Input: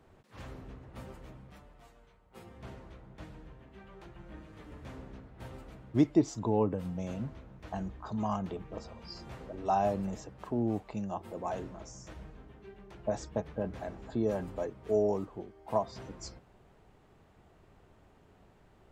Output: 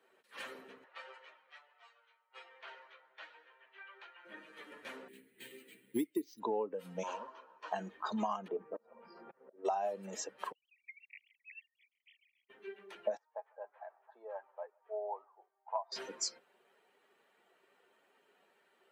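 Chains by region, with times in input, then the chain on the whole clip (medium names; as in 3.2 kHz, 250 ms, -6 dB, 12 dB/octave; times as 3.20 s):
0.84–4.25 s: band-pass 650–6900 Hz + distance through air 71 m + doubling 25 ms -11 dB
5.08–6.40 s: high-order bell 890 Hz -14 dB + careless resampling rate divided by 4×, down filtered, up hold
7.03–7.72 s: hard clipper -37.5 dBFS + cabinet simulation 360–7100 Hz, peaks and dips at 1 kHz +10 dB, 2.1 kHz -8 dB, 3.7 kHz -5 dB
8.48–9.65 s: low-pass 1.2 kHz + slow attack 297 ms
10.52–12.50 s: formants replaced by sine waves + steep high-pass 2 kHz 96 dB/octave
13.17–15.92 s: ladder band-pass 980 Hz, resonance 45% + delay 150 ms -21.5 dB
whole clip: expander on every frequency bin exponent 1.5; high-pass 310 Hz 24 dB/octave; compression 16:1, threshold -46 dBFS; trim +14 dB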